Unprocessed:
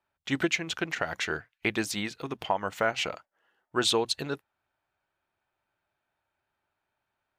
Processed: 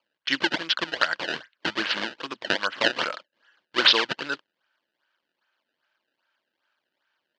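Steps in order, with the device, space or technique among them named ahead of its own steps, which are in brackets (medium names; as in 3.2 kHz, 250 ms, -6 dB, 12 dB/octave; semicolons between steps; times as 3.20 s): circuit-bent sampling toy (decimation with a swept rate 23×, swing 160% 2.5 Hz; cabinet simulation 410–5200 Hz, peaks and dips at 420 Hz -8 dB, 750 Hz -9 dB, 1.6 kHz +8 dB, 3 kHz +9 dB, 4.4 kHz +6 dB); trim +5.5 dB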